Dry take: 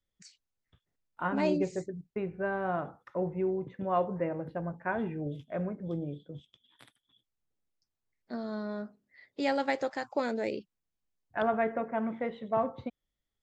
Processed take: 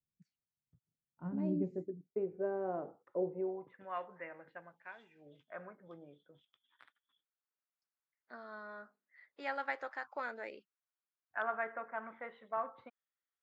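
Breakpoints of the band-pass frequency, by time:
band-pass, Q 2
1.34 s 150 Hz
2.13 s 430 Hz
3.32 s 430 Hz
3.9 s 1900 Hz
4.58 s 1900 Hz
5.09 s 6800 Hz
5.34 s 1400 Hz

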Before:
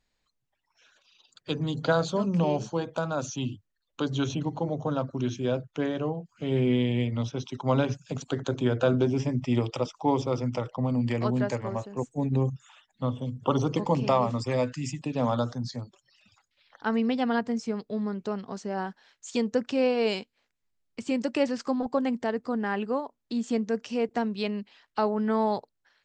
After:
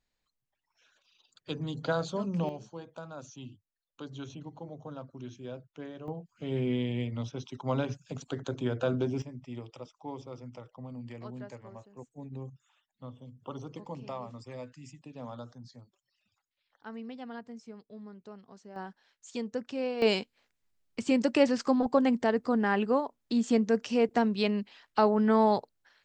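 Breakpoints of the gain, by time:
-6 dB
from 2.49 s -14 dB
from 6.08 s -6 dB
from 9.22 s -16 dB
from 18.76 s -8.5 dB
from 20.02 s +2 dB

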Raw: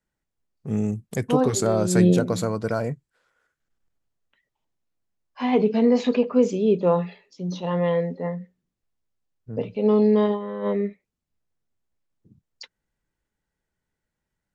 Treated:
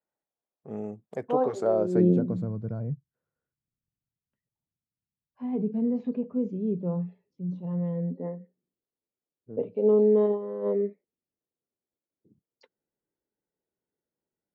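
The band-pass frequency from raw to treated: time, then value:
band-pass, Q 1.5
1.62 s 660 Hz
2.52 s 130 Hz
7.94 s 130 Hz
8.37 s 400 Hz

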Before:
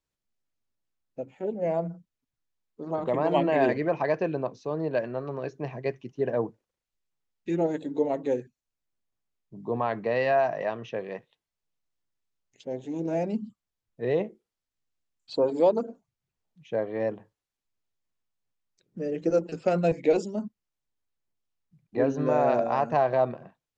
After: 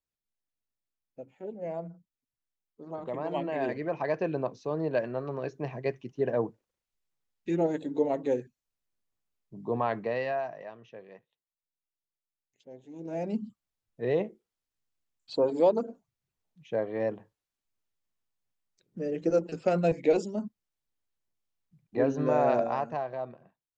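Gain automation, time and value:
3.58 s -8.5 dB
4.39 s -1 dB
9.93 s -1 dB
10.68 s -14 dB
12.88 s -14 dB
13.34 s -1.5 dB
22.62 s -1.5 dB
23.09 s -12 dB

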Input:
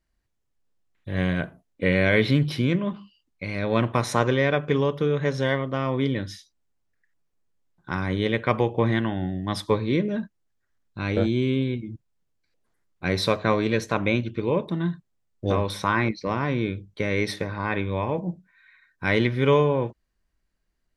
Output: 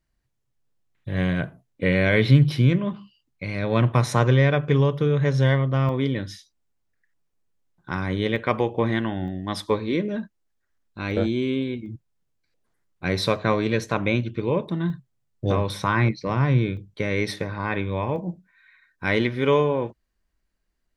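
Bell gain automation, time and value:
bell 130 Hz 0.35 oct
+11 dB
from 5.89 s +1.5 dB
from 8.36 s -5.5 dB
from 9.28 s -14.5 dB
from 11.11 s -7.5 dB
from 11.86 s +4 dB
from 14.9 s +13 dB
from 16.77 s +4.5 dB
from 18.16 s -5.5 dB

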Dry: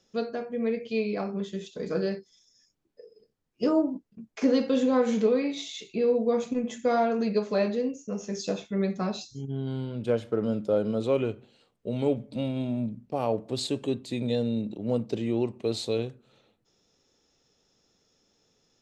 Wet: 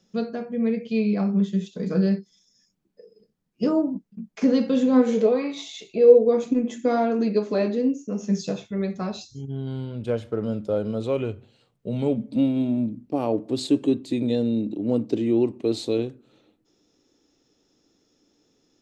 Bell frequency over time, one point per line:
bell +13 dB 0.61 oct
4.9 s 190 Hz
5.47 s 1200 Hz
6.46 s 300 Hz
8.08 s 300 Hz
8.84 s 79 Hz
11.25 s 79 Hz
12.49 s 300 Hz

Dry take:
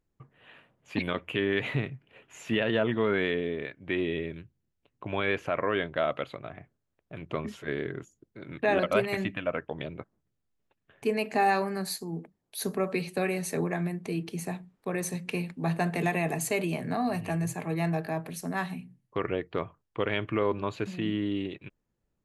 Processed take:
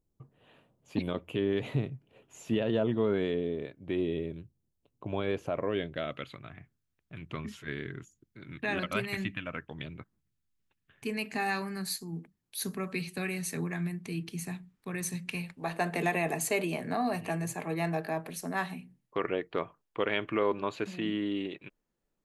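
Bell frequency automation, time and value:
bell -13 dB 1.6 oct
5.5 s 1900 Hz
6.36 s 580 Hz
15.25 s 580 Hz
15.94 s 83 Hz

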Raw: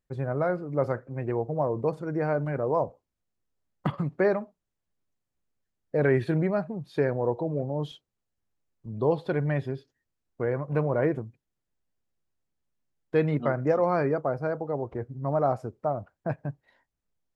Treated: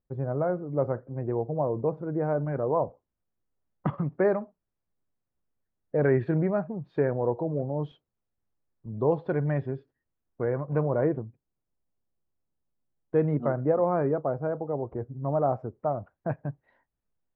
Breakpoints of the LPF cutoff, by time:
2.21 s 1000 Hz
2.71 s 1600 Hz
10.65 s 1600 Hz
11.19 s 1100 Hz
15.52 s 1100 Hz
15.94 s 1900 Hz

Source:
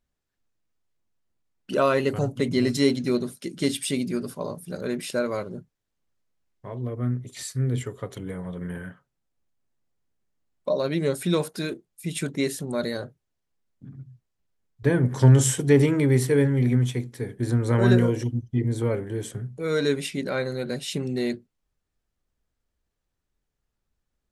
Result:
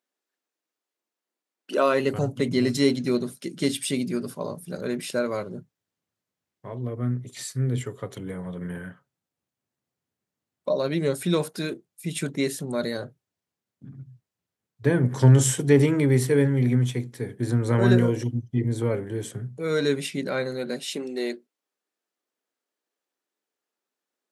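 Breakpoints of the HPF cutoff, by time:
HPF 24 dB/oct
1.72 s 290 Hz
2.17 s 91 Hz
20.15 s 91 Hz
21.12 s 290 Hz

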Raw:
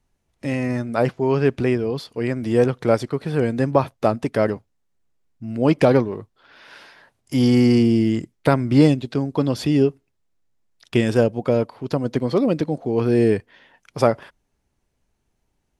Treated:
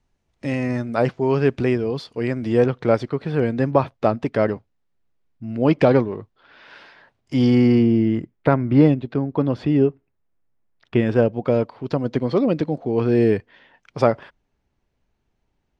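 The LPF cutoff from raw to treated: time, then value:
2.23 s 6700 Hz
2.68 s 4100 Hz
7.41 s 4100 Hz
7.92 s 2100 Hz
11 s 2100 Hz
11.6 s 4400 Hz

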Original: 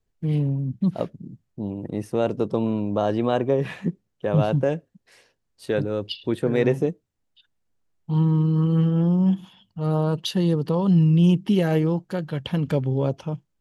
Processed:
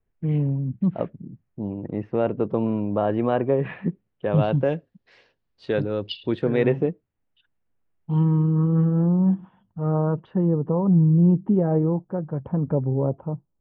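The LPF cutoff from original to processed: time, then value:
LPF 24 dB/oct
3.77 s 2500 Hz
4.76 s 4400 Hz
6.4 s 4400 Hz
6.88 s 2700 Hz
8.16 s 2700 Hz
8.64 s 1600 Hz
10.05 s 1600 Hz
10.66 s 1100 Hz

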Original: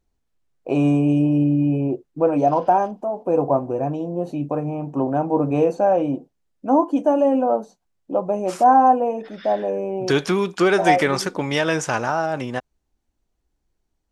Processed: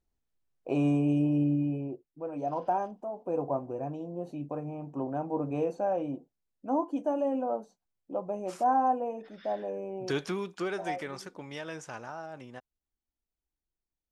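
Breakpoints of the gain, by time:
1.53 s -8.5 dB
2.21 s -20 dB
2.64 s -12 dB
10.23 s -12 dB
10.98 s -19 dB

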